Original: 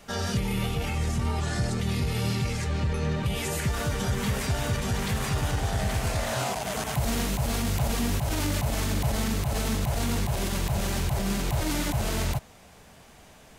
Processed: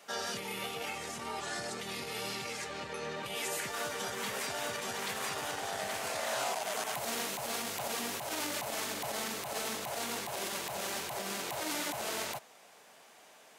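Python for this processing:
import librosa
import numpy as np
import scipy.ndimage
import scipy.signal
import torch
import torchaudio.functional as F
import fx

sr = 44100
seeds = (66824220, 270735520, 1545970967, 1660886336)

y = scipy.signal.sosfilt(scipy.signal.butter(2, 440.0, 'highpass', fs=sr, output='sos'), x)
y = y * 10.0 ** (-3.5 / 20.0)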